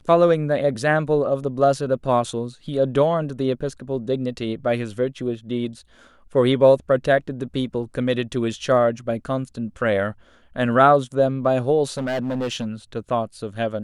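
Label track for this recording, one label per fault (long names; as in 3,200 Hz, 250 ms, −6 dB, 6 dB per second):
11.970000	12.670000	clipping −21 dBFS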